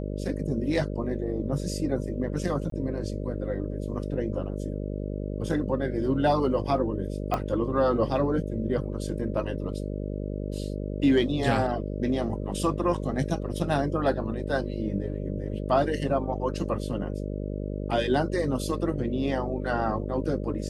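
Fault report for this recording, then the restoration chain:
mains buzz 50 Hz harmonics 12 −32 dBFS
0:02.70–0:02.72: drop-out 23 ms
0:07.34: click −14 dBFS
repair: click removal
hum removal 50 Hz, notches 12
repair the gap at 0:02.70, 23 ms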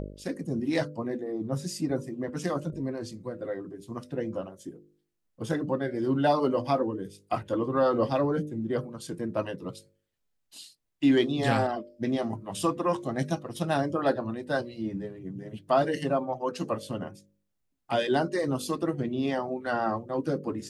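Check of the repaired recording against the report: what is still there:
0:07.34: click

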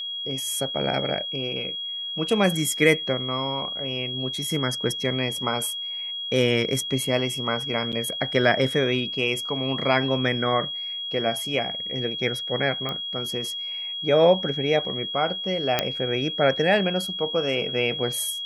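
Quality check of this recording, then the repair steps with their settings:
whistle 3,300 Hz −29 dBFS
0:07.92–0:07.93: drop-out 7.4 ms
0:12.89: click −16 dBFS
0:15.79: click −5 dBFS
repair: click removal
notch filter 3,300 Hz, Q 30
repair the gap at 0:07.92, 7.4 ms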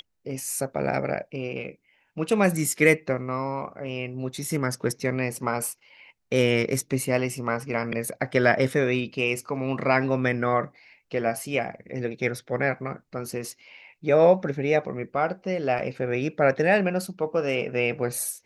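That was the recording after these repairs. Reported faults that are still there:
0:12.89: click

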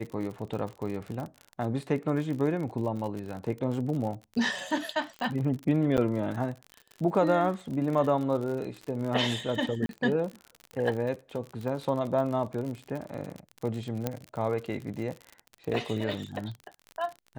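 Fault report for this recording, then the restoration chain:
surface crackle 53 per second −34 dBFS
0:05.97–0:05.98: drop-out 8.4 ms
0:09.86–0:09.89: drop-out 32 ms
0:14.07: click −14 dBFS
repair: click removal
repair the gap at 0:05.97, 8.4 ms
repair the gap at 0:09.86, 32 ms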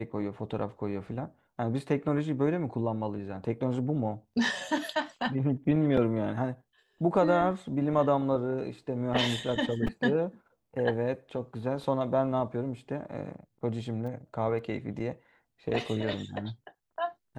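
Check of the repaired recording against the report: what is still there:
0:14.07: click

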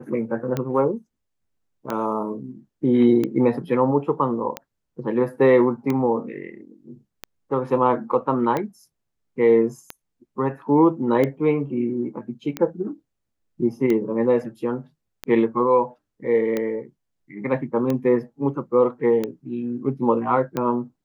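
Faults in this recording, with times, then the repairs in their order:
scratch tick 45 rpm −12 dBFS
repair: click removal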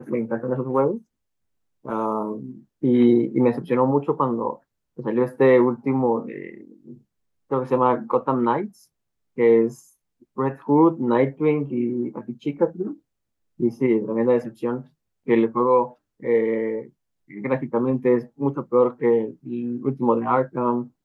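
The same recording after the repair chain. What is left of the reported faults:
none of them is left

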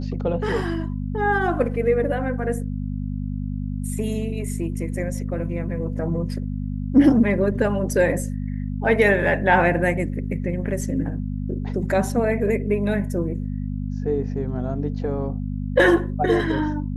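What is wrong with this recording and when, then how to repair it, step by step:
mains hum 50 Hz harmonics 5 −27 dBFS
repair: hum removal 50 Hz, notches 5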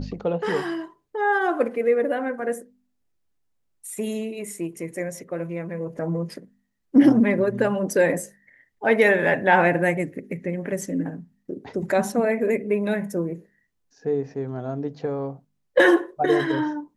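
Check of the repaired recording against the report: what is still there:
none of them is left

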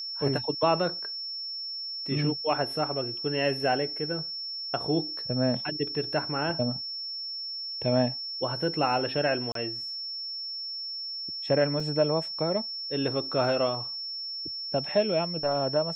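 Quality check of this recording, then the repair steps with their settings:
whistle 5,400 Hz −33 dBFS
0:09.52–0:09.55: drop-out 33 ms
0:11.80: drop-out 3.4 ms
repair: notch filter 5,400 Hz, Q 30
repair the gap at 0:09.52, 33 ms
repair the gap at 0:11.80, 3.4 ms

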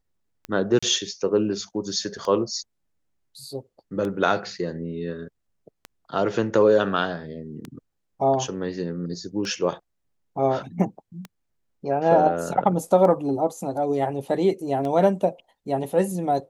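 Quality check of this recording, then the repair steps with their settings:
scratch tick 33 1/3 rpm −19 dBFS
0:00.79–0:00.82: drop-out 35 ms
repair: click removal
repair the gap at 0:00.79, 35 ms

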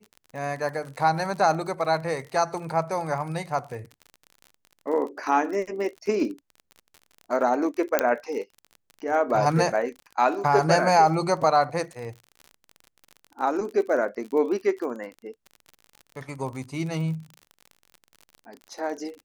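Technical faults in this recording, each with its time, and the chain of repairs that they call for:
surface crackle 42 per second −34 dBFS
0:07.99: click −4 dBFS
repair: click removal

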